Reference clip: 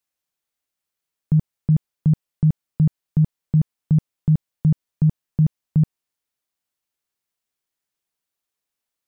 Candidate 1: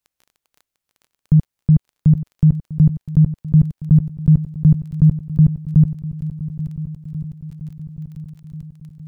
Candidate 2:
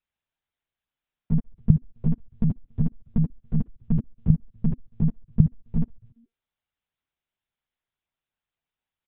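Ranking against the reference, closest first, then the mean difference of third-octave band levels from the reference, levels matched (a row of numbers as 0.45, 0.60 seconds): 1, 2; 1.5, 3.0 decibels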